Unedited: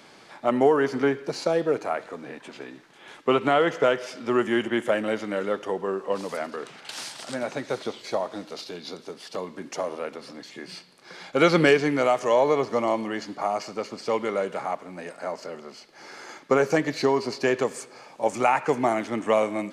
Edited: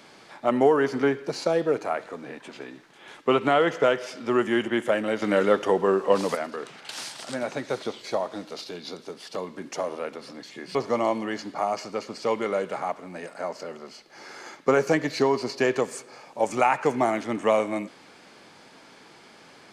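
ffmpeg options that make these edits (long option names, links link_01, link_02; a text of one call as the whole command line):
ffmpeg -i in.wav -filter_complex "[0:a]asplit=4[link_01][link_02][link_03][link_04];[link_01]atrim=end=5.222[link_05];[link_02]atrim=start=5.218:end=6.352,asetpts=PTS-STARTPTS,volume=6.5dB[link_06];[link_03]atrim=start=6.348:end=10.752[link_07];[link_04]atrim=start=12.578[link_08];[link_05][link_06]acrossfade=duration=0.004:curve1=hsin:curve2=hsin[link_09];[link_09][link_07]acrossfade=duration=0.004:curve1=hsin:curve2=hsin[link_10];[link_10][link_08]acrossfade=duration=0.004:curve1=hsin:curve2=hsin" out.wav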